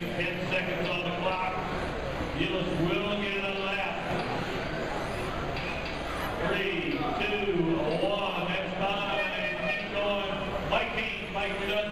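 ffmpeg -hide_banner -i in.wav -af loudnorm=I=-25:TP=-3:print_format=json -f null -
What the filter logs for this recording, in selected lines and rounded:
"input_i" : "-29.9",
"input_tp" : "-13.7",
"input_lra" : "2.2",
"input_thresh" : "-39.9",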